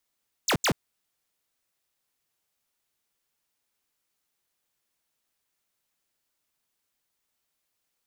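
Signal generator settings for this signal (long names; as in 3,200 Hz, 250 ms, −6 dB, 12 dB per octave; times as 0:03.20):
repeated falling chirps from 8,500 Hz, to 96 Hz, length 0.08 s square, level −23 dB, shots 2, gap 0.08 s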